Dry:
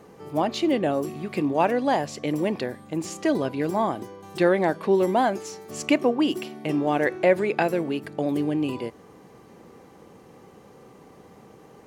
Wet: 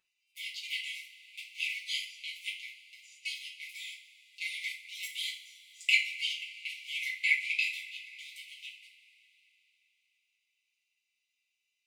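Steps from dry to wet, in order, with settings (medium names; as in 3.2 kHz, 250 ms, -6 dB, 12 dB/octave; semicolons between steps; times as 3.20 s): local Wiener filter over 41 samples; brick-wall FIR high-pass 2 kHz; reverberation, pre-delay 3 ms, DRR -6.5 dB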